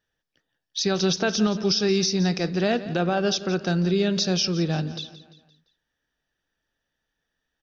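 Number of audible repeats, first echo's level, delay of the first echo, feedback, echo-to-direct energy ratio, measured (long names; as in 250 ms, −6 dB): 3, −15.5 dB, 172 ms, 47%, −14.5 dB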